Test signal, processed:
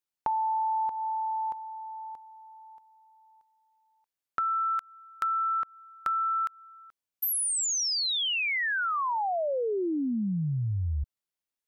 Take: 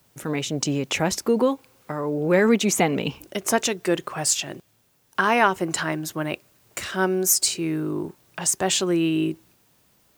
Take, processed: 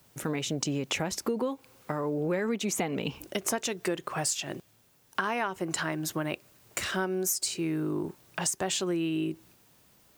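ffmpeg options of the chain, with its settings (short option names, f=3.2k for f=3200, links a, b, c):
-af "acompressor=threshold=-27dB:ratio=6"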